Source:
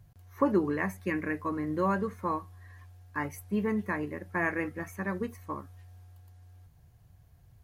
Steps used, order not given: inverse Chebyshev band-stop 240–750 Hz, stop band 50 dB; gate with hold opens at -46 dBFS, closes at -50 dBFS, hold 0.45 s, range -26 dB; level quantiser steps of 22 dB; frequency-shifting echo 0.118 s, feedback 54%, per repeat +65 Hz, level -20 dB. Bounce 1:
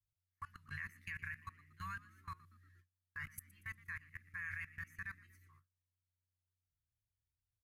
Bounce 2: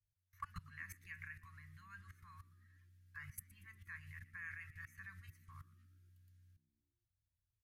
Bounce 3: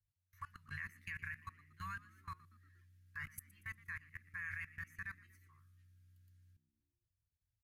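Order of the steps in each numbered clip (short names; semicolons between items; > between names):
inverse Chebyshev band-stop > level quantiser > frequency-shifting echo > gate with hold; gate with hold > level quantiser > inverse Chebyshev band-stop > frequency-shifting echo; gate with hold > inverse Chebyshev band-stop > level quantiser > frequency-shifting echo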